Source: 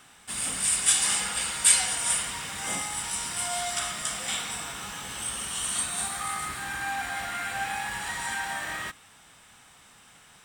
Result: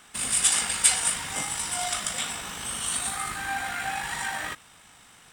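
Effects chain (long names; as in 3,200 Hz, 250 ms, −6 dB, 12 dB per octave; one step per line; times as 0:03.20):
time stretch by overlap-add 0.51×, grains 39 ms
level +2.5 dB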